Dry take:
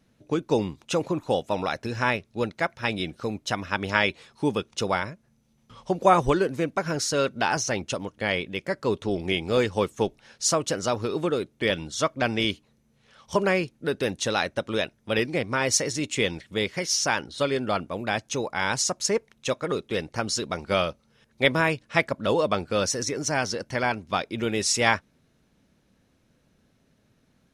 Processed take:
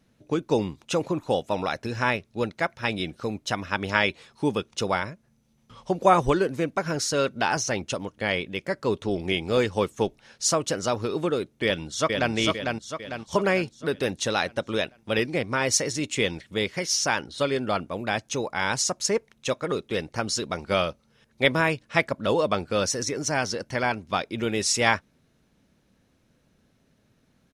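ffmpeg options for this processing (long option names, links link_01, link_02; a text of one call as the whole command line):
ffmpeg -i in.wav -filter_complex "[0:a]asplit=2[link_01][link_02];[link_02]afade=type=in:start_time=11.64:duration=0.01,afade=type=out:start_time=12.33:duration=0.01,aecho=0:1:450|900|1350|1800|2250|2700|3150:0.668344|0.334172|0.167086|0.083543|0.0417715|0.0208857|0.0104429[link_03];[link_01][link_03]amix=inputs=2:normalize=0" out.wav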